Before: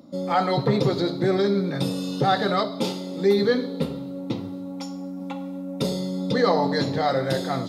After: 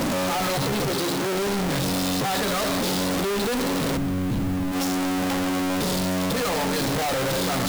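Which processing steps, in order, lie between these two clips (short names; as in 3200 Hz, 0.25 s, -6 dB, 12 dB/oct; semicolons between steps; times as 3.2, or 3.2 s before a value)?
infinite clipping; 0.92–1.35 HPF 140 Hz 6 dB/oct; 3.97–4.72 tone controls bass +15 dB, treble -6 dB; limiter -18.5 dBFS, peak gain reduction 9.5 dB; requantised 8-bit, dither triangular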